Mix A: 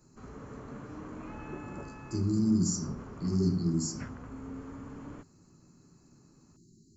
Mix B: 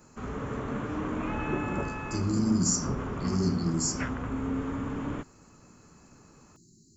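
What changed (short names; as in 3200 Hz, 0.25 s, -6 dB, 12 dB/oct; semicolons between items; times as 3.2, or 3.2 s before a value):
background +11.0 dB; master: add high shelf 3400 Hz +9 dB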